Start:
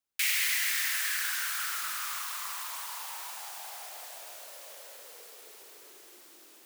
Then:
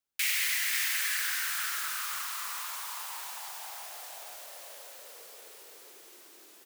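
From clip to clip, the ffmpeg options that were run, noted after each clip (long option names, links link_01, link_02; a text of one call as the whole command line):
ffmpeg -i in.wav -af "aecho=1:1:533:0.473,volume=-1dB" out.wav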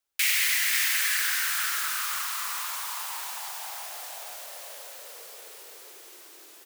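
ffmpeg -i in.wav -af "equalizer=frequency=160:width=1.4:gain=-14,volume=5dB" out.wav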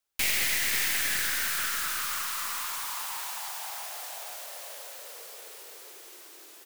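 ffmpeg -i in.wav -af "aeval=exprs='clip(val(0),-1,0.0266)':channel_layout=same" out.wav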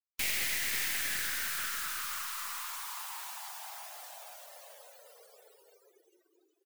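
ffmpeg -i in.wav -af "afftdn=noise_reduction=32:noise_floor=-47,volume=-5.5dB" out.wav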